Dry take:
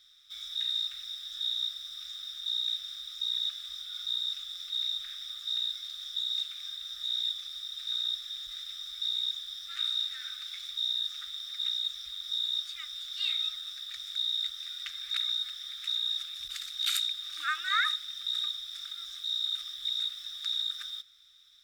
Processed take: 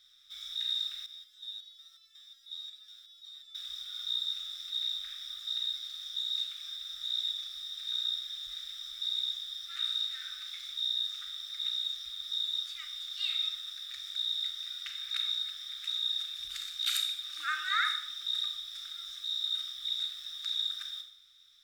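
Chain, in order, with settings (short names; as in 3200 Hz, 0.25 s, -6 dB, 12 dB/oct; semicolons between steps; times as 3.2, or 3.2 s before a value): Schroeder reverb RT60 0.59 s, combs from 29 ms, DRR 5.5 dB; 1.06–3.55 stepped resonator 5.5 Hz 81–440 Hz; gain -2.5 dB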